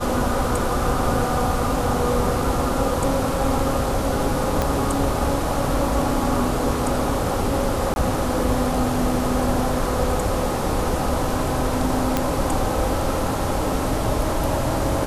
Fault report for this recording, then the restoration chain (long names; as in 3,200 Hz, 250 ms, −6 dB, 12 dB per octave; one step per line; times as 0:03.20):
0:04.62: click −7 dBFS
0:07.94–0:07.96: drop-out 21 ms
0:12.17: click −5 dBFS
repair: click removal
repair the gap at 0:07.94, 21 ms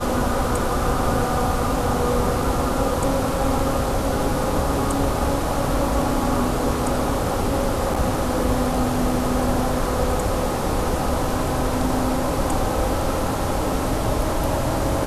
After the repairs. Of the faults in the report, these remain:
0:04.62: click